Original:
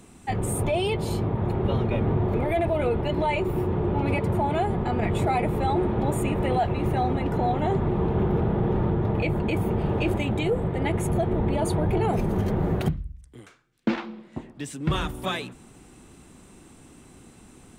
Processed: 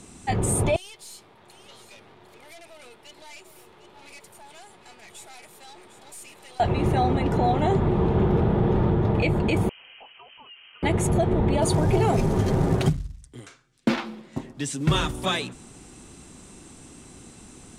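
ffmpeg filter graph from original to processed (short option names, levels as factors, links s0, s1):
-filter_complex "[0:a]asettb=1/sr,asplit=3[s0][s1][s2];[s0]atrim=end=0.764[s3];[s1]atrim=start=0.76:end=6.6,asetpts=PTS-STARTPTS,afade=t=in:d=0.004:c=qsin,afade=t=out:st=5.836:d=0.004:c=qsin,aderivative,aeval=exprs='(tanh(200*val(0)+0.65)-tanh(0.65))/200':c=same,aecho=1:1:753:0.266,atrim=end_sample=257544[s4];[s2]atrim=start=6.596[s5];[s3][s4]acrossfade=d=0.004:c1=hsin:c2=qsin[s6];[s6][s5]acrossfade=d=0.004:c1=qsin:c2=hsin,asettb=1/sr,asplit=3[s7][s8][s9];[s7]atrim=end=9.694[s10];[s8]atrim=start=9.69:end=10.83,asetpts=PTS-STARTPTS,afade=t=in:d=0.004:c=qsin,afade=t=out:st=1.136:d=0.004:c=qsin,aderivative,acompressor=threshold=0.00355:ratio=2:attack=3.2:release=140:knee=1:detection=peak,lowpass=f=2800:t=q:w=0.5098,lowpass=f=2800:t=q:w=0.6013,lowpass=f=2800:t=q:w=0.9,lowpass=f=2800:t=q:w=2.563,afreqshift=-3300[s11];[s9]atrim=start=10.826[s12];[s10][s11]acrossfade=d=0.004:c1=hsin:c2=qsin[s13];[s13][s12]acrossfade=d=0.004:c1=qsin:c2=hsin,asettb=1/sr,asplit=3[s14][s15][s16];[s14]atrim=end=11.624[s17];[s15]atrim=start=11.62:end=15.11,asetpts=PTS-STARTPTS,afade=t=in:d=0.004:c=qsin,afade=t=out:st=3.486:d=0.004:c=qsin,aecho=1:1:7.5:0.35,atrim=end_sample=153909,acrusher=bits=8:mode=log:mix=0:aa=0.000001[s18];[s16]atrim=start=15.106[s19];[s17][s18]acrossfade=d=0.004:c1=hsin:c2=qsin[s20];[s20][s19]acrossfade=d=0.004:c1=qsin:c2=hsin,lowpass=7900,bass=f=250:g=0,treble=f=4000:g=9,volume=1.33"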